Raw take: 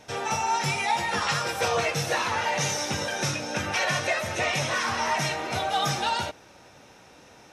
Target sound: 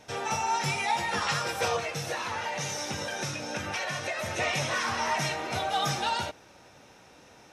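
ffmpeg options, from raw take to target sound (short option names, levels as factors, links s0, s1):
-filter_complex "[0:a]asettb=1/sr,asplit=3[s0][s1][s2];[s0]atrim=end=1.764[s3];[s1]atrim=start=1.76:end=4.19,asetpts=PTS-STARTPTS,afade=t=in:d=0.004:c=qsin,afade=t=out:st=2.426:d=0.004:c=qsin,acompressor=threshold=0.0447:ratio=6[s4];[s2]atrim=start=4.186[s5];[s3][s4]acrossfade=d=0.004:c1=hsin:c2=qsin[s6];[s6][s5]acrossfade=d=0.004:c1=qsin:c2=hsin,volume=0.75"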